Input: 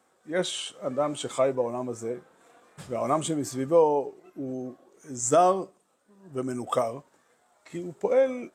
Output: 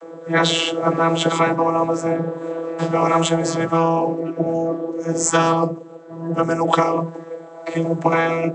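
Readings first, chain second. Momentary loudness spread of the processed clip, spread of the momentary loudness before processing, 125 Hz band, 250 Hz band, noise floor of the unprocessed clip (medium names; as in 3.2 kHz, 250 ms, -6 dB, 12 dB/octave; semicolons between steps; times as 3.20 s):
10 LU, 17 LU, +15.0 dB, +11.5 dB, -67 dBFS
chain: peaking EQ 410 Hz +14.5 dB 1.8 oct; vocoder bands 32, saw 165 Hz; spectrum-flattening compressor 10:1; trim -6 dB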